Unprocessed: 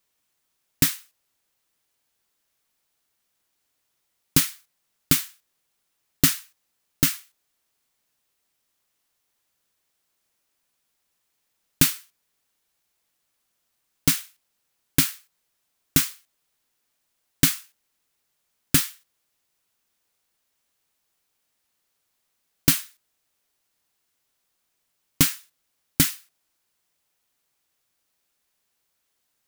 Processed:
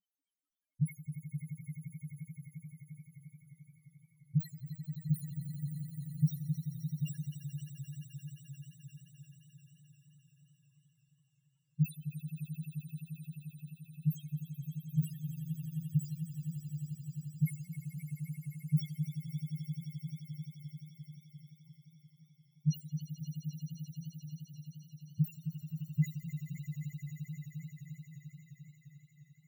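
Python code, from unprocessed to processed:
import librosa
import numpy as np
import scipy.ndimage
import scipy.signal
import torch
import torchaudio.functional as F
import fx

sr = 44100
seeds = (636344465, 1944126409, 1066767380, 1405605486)

y = fx.spec_topn(x, sr, count=1)
y = fx.echo_swell(y, sr, ms=87, loudest=8, wet_db=-13.5)
y = fx.echo_warbled(y, sr, ms=265, feedback_pct=78, rate_hz=2.8, cents=79, wet_db=-12)
y = y * 10.0 ** (4.5 / 20.0)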